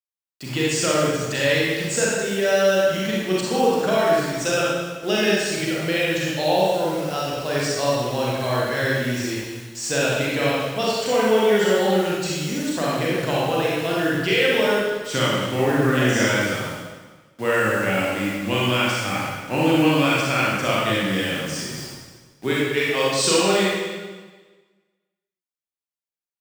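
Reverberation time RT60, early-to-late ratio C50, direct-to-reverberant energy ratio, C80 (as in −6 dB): 1.4 s, −3.5 dB, −6.5 dB, 0.0 dB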